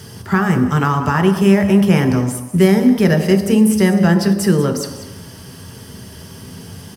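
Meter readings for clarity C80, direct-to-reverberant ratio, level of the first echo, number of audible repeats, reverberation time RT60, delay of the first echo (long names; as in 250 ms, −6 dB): 9.0 dB, 3.5 dB, −14.5 dB, 1, 1.0 s, 191 ms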